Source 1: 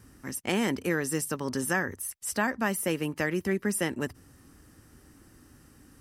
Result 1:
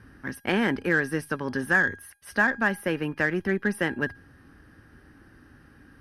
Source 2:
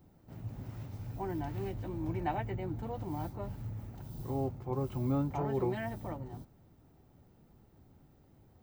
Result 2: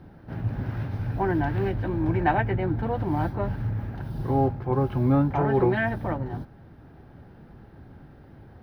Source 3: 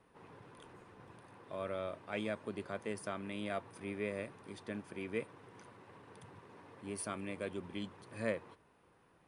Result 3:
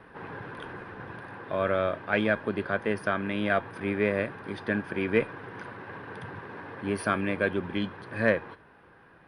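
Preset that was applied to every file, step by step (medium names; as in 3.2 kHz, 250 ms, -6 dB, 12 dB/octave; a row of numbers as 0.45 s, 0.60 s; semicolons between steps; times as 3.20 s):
peaking EQ 1.6 kHz +10 dB 0.33 oct; in parallel at +0.5 dB: gain riding within 5 dB 2 s; on the sum: boxcar filter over 6 samples; Chebyshev shaper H 8 -34 dB, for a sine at -6 dBFS; feedback comb 820 Hz, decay 0.39 s, mix 60%; peak normalisation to -9 dBFS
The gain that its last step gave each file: +3.0 dB, +12.5 dB, +13.5 dB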